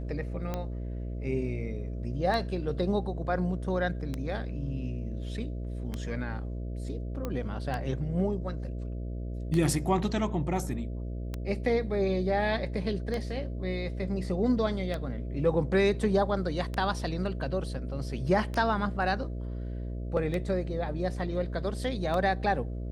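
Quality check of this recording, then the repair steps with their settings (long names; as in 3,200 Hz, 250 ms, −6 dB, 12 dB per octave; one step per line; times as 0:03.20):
mains buzz 60 Hz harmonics 11 −35 dBFS
scratch tick 33 1/3 rpm −19 dBFS
0:07.25: click −20 dBFS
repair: click removal
hum removal 60 Hz, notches 11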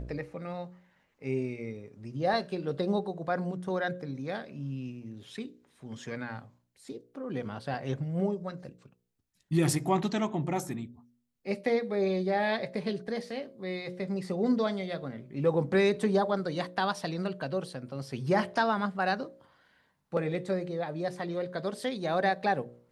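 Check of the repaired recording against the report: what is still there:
none of them is left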